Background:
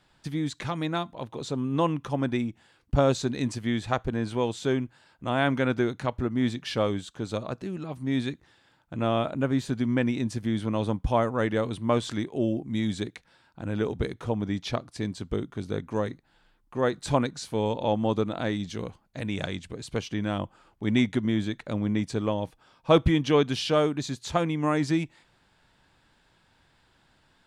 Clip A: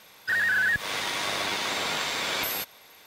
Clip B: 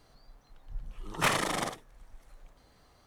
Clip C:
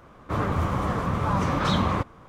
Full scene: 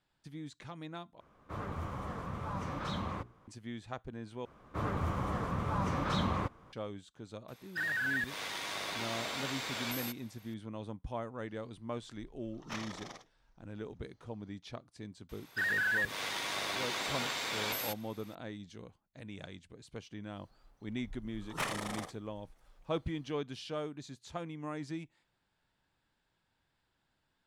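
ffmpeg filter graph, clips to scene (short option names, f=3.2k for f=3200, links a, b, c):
-filter_complex "[3:a]asplit=2[a][b];[1:a]asplit=2[c][d];[2:a]asplit=2[e][f];[0:a]volume=-15.5dB[g];[a]bandreject=f=60:t=h:w=6,bandreject=f=120:t=h:w=6,bandreject=f=180:t=h:w=6,bandreject=f=240:t=h:w=6,bandreject=f=300:t=h:w=6,bandreject=f=360:t=h:w=6,bandreject=f=420:t=h:w=6[h];[e]highshelf=f=7.3k:t=q:w=3:g=-8[i];[g]asplit=3[j][k][l];[j]atrim=end=1.204[m];[h]atrim=end=2.28,asetpts=PTS-STARTPTS,volume=-14dB[n];[k]atrim=start=3.476:end=4.454[o];[b]atrim=end=2.28,asetpts=PTS-STARTPTS,volume=-9dB[p];[l]atrim=start=6.726[q];[c]atrim=end=3.06,asetpts=PTS-STARTPTS,volume=-10dB,afade=t=in:d=0.004:c=hsin,afade=t=out:st=3.056:d=0.004:c=hsin,adelay=7480[r];[i]atrim=end=3.06,asetpts=PTS-STARTPTS,volume=-16.5dB,afade=t=in:d=0.004:c=hsin,afade=t=out:st=3.056:d=0.004:c=hsin,adelay=11480[s];[d]atrim=end=3.06,asetpts=PTS-STARTPTS,volume=-7.5dB,afade=t=in:d=0.004:c=hsin,afade=t=out:st=3.056:d=0.004:c=hsin,adelay=15290[t];[f]atrim=end=3.06,asetpts=PTS-STARTPTS,volume=-9dB,afade=t=in:d=0.004:c=hsin,afade=t=out:st=3.056:d=0.004:c=hsin,adelay=897876S[u];[m][n]acrossfade=d=0.004:c1=hsin:c2=hsin[v];[v][o]acrossfade=d=0.004:c1=hsin:c2=hsin[w];[w][p]acrossfade=d=0.004:c1=hsin:c2=hsin[x];[x][q]acrossfade=d=0.004:c1=hsin:c2=hsin[y];[y][r][s][t][u]amix=inputs=5:normalize=0"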